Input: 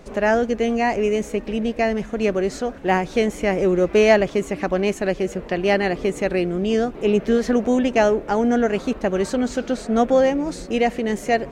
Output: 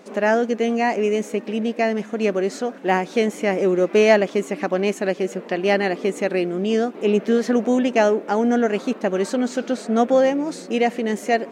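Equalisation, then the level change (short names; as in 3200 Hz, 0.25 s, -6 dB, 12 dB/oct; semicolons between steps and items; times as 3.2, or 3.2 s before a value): brick-wall FIR high-pass 170 Hz; 0.0 dB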